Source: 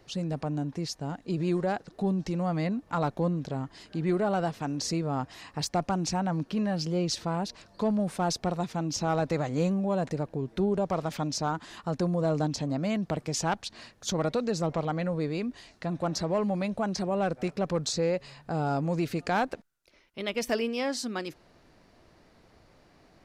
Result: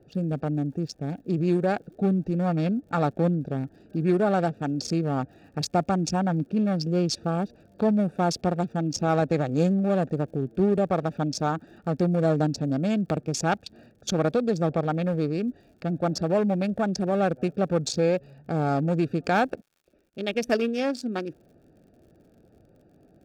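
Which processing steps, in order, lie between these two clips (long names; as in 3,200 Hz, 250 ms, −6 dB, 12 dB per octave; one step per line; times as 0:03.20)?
adaptive Wiener filter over 41 samples
surface crackle 66 per second −58 dBFS
notch comb filter 1,000 Hz
level +6 dB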